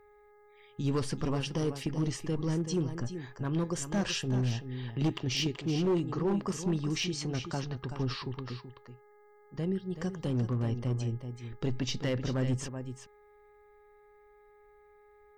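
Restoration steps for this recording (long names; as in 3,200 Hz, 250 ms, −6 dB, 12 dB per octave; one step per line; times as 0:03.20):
clipped peaks rebuilt −23.5 dBFS
hum removal 416 Hz, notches 5
echo removal 380 ms −10 dB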